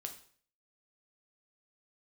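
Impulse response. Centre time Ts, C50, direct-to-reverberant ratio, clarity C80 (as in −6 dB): 12 ms, 10.5 dB, 4.0 dB, 14.5 dB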